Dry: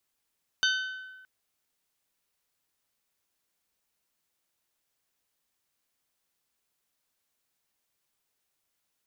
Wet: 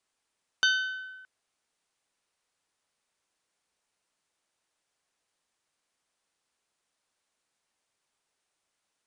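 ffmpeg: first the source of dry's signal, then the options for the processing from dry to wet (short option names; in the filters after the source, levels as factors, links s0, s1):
-f lavfi -i "aevalsrc='0.0708*pow(10,-3*t/1.34)*sin(2*PI*1520*t)+0.0531*pow(10,-3*t/0.825)*sin(2*PI*3040*t)+0.0398*pow(10,-3*t/0.726)*sin(2*PI*3648*t)+0.0299*pow(10,-3*t/0.621)*sin(2*PI*4560*t)+0.0224*pow(10,-3*t/0.508)*sin(2*PI*6080*t)':d=0.62:s=44100"
-af "equalizer=f=830:w=0.45:g=4,aresample=22050,aresample=44100,lowshelf=f=180:g=-3.5"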